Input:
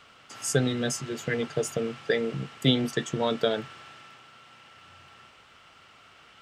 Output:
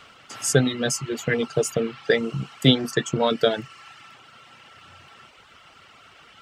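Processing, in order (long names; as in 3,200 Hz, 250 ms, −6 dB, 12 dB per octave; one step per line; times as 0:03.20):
reverb reduction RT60 0.79 s
level +6 dB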